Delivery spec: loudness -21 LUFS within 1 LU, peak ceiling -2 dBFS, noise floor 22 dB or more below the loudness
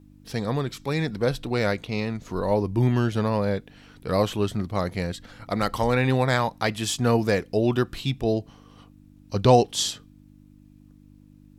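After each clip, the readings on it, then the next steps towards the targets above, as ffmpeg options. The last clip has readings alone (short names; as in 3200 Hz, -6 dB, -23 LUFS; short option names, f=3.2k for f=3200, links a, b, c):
hum 50 Hz; harmonics up to 300 Hz; hum level -46 dBFS; loudness -25.0 LUFS; peak -4.5 dBFS; loudness target -21.0 LUFS
-> -af "bandreject=f=50:t=h:w=4,bandreject=f=100:t=h:w=4,bandreject=f=150:t=h:w=4,bandreject=f=200:t=h:w=4,bandreject=f=250:t=h:w=4,bandreject=f=300:t=h:w=4"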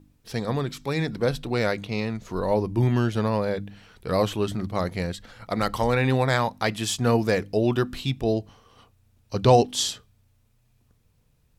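hum none; loudness -25.0 LUFS; peak -5.0 dBFS; loudness target -21.0 LUFS
-> -af "volume=4dB,alimiter=limit=-2dB:level=0:latency=1"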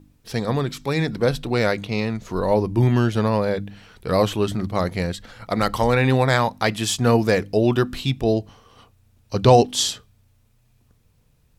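loudness -21.0 LUFS; peak -2.0 dBFS; noise floor -60 dBFS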